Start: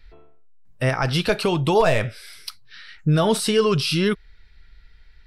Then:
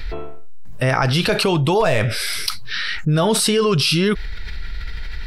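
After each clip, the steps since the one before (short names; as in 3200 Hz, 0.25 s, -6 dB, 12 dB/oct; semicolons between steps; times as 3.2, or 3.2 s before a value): fast leveller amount 70%; gain -1 dB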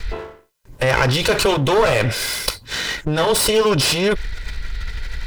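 minimum comb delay 2 ms; gain +2.5 dB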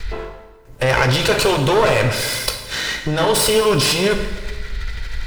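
plate-style reverb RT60 1.4 s, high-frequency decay 0.8×, DRR 5.5 dB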